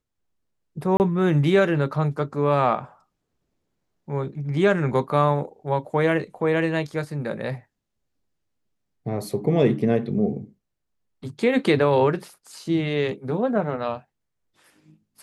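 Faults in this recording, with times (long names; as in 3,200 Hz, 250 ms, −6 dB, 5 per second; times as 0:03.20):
0:00.97–0:01.00: drop-out 29 ms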